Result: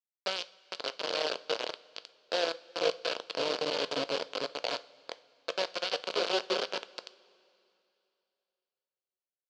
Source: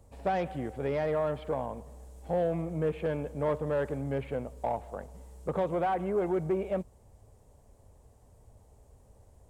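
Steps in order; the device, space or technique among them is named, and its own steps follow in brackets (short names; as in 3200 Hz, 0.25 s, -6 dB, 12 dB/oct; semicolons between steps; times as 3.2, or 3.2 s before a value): 3.25–4.04 graphic EQ 125/250/500/1000/2000/4000/8000 Hz +7/+11/-7/-8/+7/-9/+10 dB; bouncing-ball echo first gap 0.45 s, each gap 0.65×, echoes 5; hand-held game console (bit-crush 4-bit; speaker cabinet 490–5400 Hz, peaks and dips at 500 Hz +8 dB, 820 Hz -6 dB, 1200 Hz -4 dB, 1900 Hz -10 dB, 3000 Hz +5 dB, 4500 Hz +9 dB); two-slope reverb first 0.34 s, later 2.8 s, from -17 dB, DRR 12.5 dB; gain -3 dB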